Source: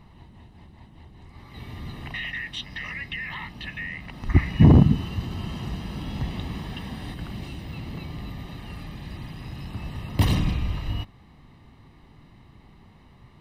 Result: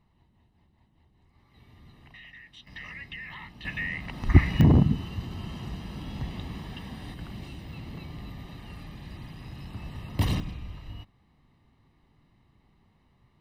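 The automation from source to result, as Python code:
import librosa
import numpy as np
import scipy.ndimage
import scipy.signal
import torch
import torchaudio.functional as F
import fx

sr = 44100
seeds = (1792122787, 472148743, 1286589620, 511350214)

y = fx.gain(x, sr, db=fx.steps((0.0, -16.5), (2.67, -7.5), (3.65, 1.5), (4.61, -5.0), (10.4, -12.5)))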